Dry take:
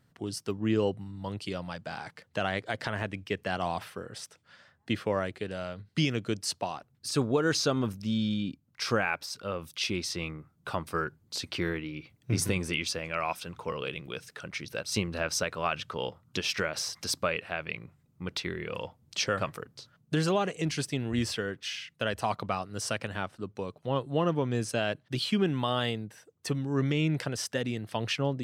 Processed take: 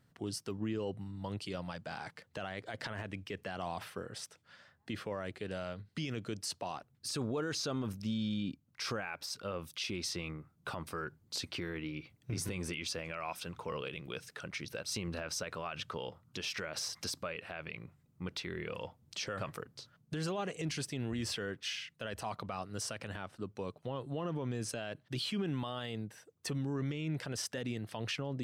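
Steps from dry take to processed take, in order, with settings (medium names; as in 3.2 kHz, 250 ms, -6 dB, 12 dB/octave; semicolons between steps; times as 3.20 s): peak limiter -25.5 dBFS, peak gain reduction 10 dB; trim -2.5 dB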